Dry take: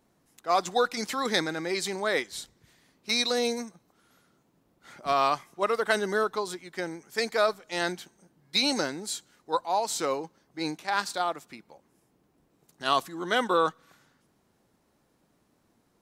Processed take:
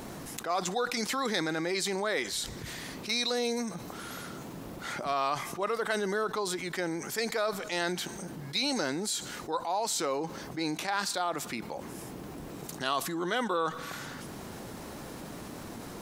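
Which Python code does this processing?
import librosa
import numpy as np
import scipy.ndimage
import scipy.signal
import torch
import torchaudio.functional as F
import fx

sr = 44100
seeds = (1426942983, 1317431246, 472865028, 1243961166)

y = fx.env_flatten(x, sr, amount_pct=70)
y = F.gain(torch.from_numpy(y), -7.5).numpy()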